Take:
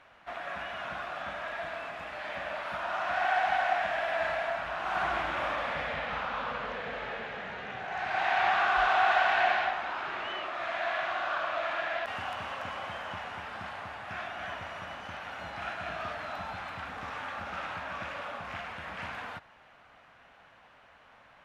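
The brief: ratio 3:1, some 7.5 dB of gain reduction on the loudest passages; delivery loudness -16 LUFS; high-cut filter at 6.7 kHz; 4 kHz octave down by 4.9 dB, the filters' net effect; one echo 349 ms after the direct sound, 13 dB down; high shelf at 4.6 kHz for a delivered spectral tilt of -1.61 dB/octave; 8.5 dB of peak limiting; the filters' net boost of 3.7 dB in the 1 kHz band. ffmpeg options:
-af "lowpass=6700,equalizer=f=1000:t=o:g=6,equalizer=f=4000:t=o:g=-3.5,highshelf=f=4600:g=-8.5,acompressor=threshold=0.0355:ratio=3,alimiter=level_in=1.41:limit=0.0631:level=0:latency=1,volume=0.708,aecho=1:1:349:0.224,volume=10"

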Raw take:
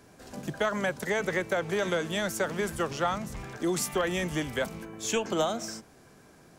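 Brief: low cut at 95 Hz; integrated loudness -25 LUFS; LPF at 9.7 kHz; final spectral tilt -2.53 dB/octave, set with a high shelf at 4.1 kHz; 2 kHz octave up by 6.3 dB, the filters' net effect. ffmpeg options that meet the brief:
-af "highpass=95,lowpass=9700,equalizer=f=2000:t=o:g=6,highshelf=f=4100:g=9,volume=1.26"

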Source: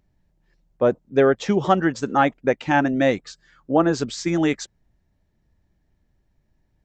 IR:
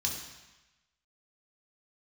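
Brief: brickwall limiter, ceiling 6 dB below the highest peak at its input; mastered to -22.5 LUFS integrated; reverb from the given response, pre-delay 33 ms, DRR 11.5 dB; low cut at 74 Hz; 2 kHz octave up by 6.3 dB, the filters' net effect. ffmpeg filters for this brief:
-filter_complex "[0:a]highpass=74,equalizer=f=2000:t=o:g=8,alimiter=limit=0.447:level=0:latency=1,asplit=2[s0][s1];[1:a]atrim=start_sample=2205,adelay=33[s2];[s1][s2]afir=irnorm=-1:irlink=0,volume=0.168[s3];[s0][s3]amix=inputs=2:normalize=0,volume=0.841"

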